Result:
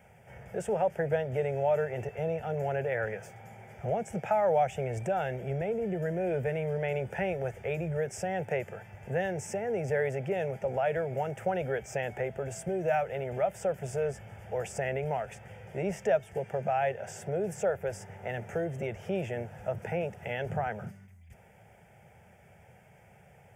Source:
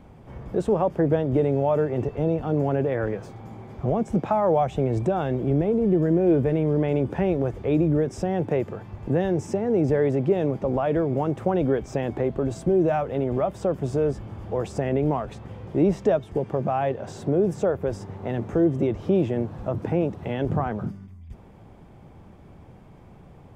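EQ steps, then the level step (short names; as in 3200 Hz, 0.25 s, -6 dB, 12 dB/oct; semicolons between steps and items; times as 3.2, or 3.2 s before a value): HPF 92 Hz; tilt shelf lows -6.5 dB, about 1100 Hz; fixed phaser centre 1100 Hz, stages 6; 0.0 dB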